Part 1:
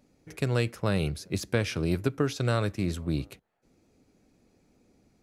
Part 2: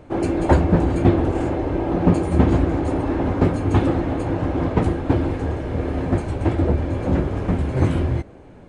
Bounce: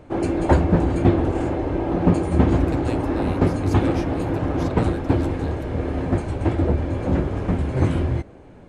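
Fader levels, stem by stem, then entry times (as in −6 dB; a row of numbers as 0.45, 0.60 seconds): −6.5, −1.0 decibels; 2.30, 0.00 seconds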